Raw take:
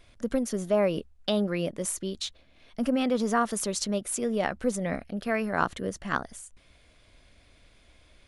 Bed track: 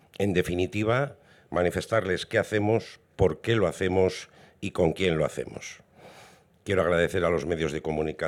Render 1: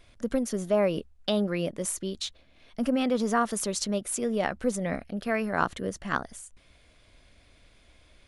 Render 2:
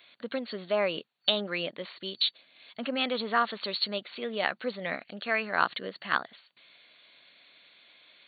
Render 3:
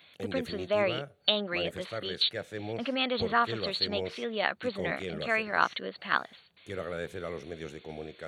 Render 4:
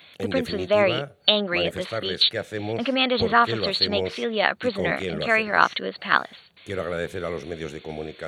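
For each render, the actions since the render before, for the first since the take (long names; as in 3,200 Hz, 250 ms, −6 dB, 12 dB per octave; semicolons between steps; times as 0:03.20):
no processing that can be heard
brick-wall band-pass 120–4,500 Hz; spectral tilt +4.5 dB per octave
mix in bed track −13 dB
level +8 dB; brickwall limiter −1 dBFS, peak gain reduction 1 dB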